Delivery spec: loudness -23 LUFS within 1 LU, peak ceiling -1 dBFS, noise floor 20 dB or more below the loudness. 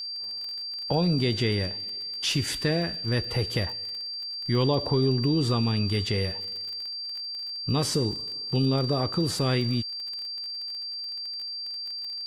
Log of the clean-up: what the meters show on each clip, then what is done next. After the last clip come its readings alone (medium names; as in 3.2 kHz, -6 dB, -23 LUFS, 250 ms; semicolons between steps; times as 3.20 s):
tick rate 29 per s; steady tone 4.7 kHz; tone level -32 dBFS; loudness -27.5 LUFS; peak level -12.0 dBFS; loudness target -23.0 LUFS
-> de-click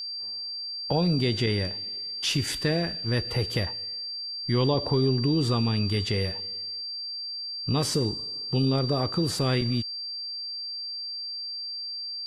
tick rate 0 per s; steady tone 4.7 kHz; tone level -32 dBFS
-> band-stop 4.7 kHz, Q 30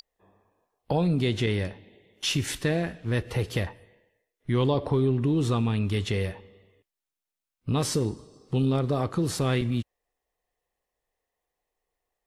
steady tone not found; loudness -27.0 LUFS; peak level -12.5 dBFS; loudness target -23.0 LUFS
-> trim +4 dB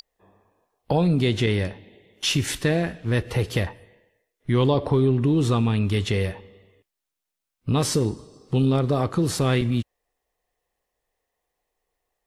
loudness -23.0 LUFS; peak level -8.5 dBFS; noise floor -84 dBFS